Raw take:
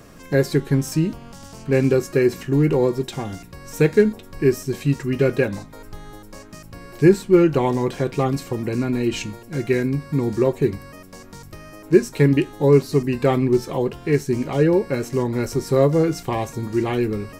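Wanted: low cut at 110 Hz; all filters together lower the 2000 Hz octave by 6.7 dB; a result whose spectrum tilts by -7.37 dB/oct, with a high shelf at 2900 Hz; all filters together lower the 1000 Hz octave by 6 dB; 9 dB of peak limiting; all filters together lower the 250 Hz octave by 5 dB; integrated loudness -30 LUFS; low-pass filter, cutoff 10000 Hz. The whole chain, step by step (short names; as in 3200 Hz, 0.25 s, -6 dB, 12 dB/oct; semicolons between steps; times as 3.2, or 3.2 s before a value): HPF 110 Hz; LPF 10000 Hz; bell 250 Hz -6.5 dB; bell 1000 Hz -6 dB; bell 2000 Hz -4 dB; high shelf 2900 Hz -6.5 dB; gain -3 dB; limiter -18 dBFS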